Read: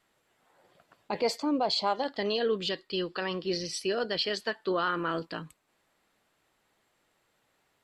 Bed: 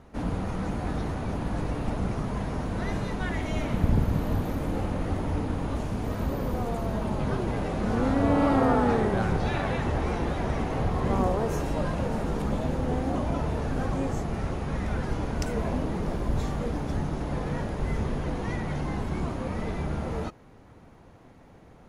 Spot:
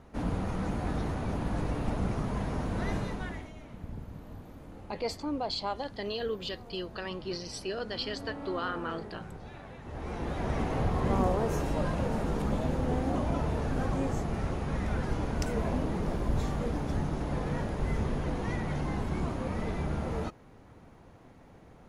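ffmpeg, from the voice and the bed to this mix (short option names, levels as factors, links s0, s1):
-filter_complex "[0:a]adelay=3800,volume=0.531[s0];[1:a]volume=5.31,afade=t=out:st=2.94:d=0.59:silence=0.149624,afade=t=in:st=9.83:d=0.78:silence=0.149624[s1];[s0][s1]amix=inputs=2:normalize=0"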